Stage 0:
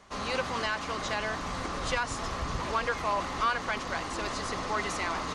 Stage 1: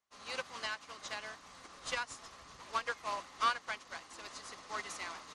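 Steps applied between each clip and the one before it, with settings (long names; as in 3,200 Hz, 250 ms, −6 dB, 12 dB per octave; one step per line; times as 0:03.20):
spectral tilt +2.5 dB per octave
expander for the loud parts 2.5 to 1, over −44 dBFS
level −3 dB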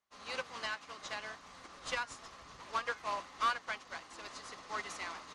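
high-shelf EQ 7,000 Hz −7.5 dB
flanger 0.57 Hz, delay 3.1 ms, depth 4.1 ms, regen −88%
soft clipping −29 dBFS, distortion −18 dB
level +6 dB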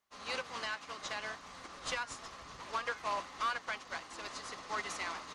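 brickwall limiter −30.5 dBFS, peak gain reduction 7 dB
level +3.5 dB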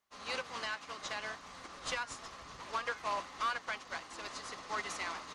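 no processing that can be heard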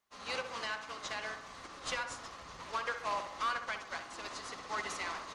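feedback echo with a low-pass in the loop 65 ms, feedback 61%, low-pass 2,000 Hz, level −7.5 dB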